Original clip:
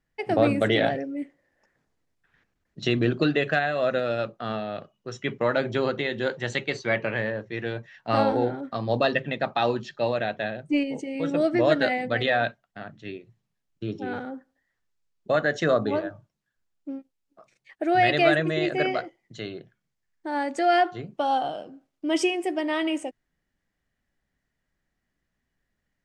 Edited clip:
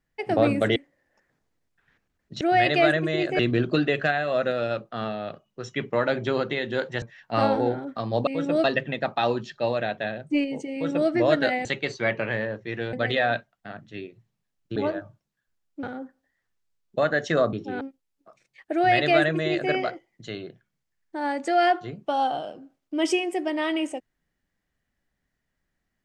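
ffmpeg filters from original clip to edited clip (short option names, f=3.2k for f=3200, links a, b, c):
-filter_complex "[0:a]asplit=13[a][b][c][d][e][f][g][h][i][j][k][l][m];[a]atrim=end=0.762[n];[b]atrim=start=1.218:end=2.872[o];[c]atrim=start=17.838:end=18.822[p];[d]atrim=start=2.868:end=6.502[q];[e]atrim=start=7.778:end=9.032[r];[f]atrim=start=11.118:end=11.492[s];[g]atrim=start=9.028:end=12.042[t];[h]atrim=start=6.498:end=7.782[u];[i]atrim=start=12.038:end=13.872[v];[j]atrim=start=15.848:end=16.922[w];[k]atrim=start=14.148:end=15.852[x];[l]atrim=start=13.868:end=14.152[y];[m]atrim=start=16.918[z];[n][o]acrossfade=d=0.004:c1=hsin:c2=hsin[aa];[aa][p]acrossfade=d=0.004:c1=hsin:c2=hsin[ab];[ab][q]acrossfade=d=0.004:c1=hsin:c2=hsin[ac];[ac][r]acrossfade=d=0.004:c1=hsin:c2=hsin[ad];[ad][s]acrossfade=d=0.004:c1=hsin:c2=hsin[ae];[ae][t]acrossfade=d=0.004:c1=hsin:c2=hsin[af];[af][u]acrossfade=d=0.004:c1=hsin:c2=hsin[ag];[ag][v]acrossfade=d=0.004:c1=hsin:c2=hsin[ah];[ah][w]acrossfade=d=0.004:c1=hsin:c2=hsin[ai];[ai][x]acrossfade=d=0.004:c1=hsin:c2=hsin[aj];[aj][y]acrossfade=d=0.004:c1=hsin:c2=hsin[ak];[ak][z]acrossfade=d=0.004:c1=hsin:c2=hsin"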